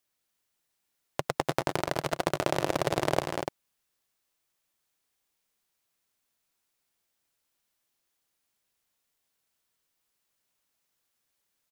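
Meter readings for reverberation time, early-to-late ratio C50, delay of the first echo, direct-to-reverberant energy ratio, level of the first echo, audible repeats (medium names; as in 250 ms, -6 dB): no reverb, no reverb, 101 ms, no reverb, -20.0 dB, 3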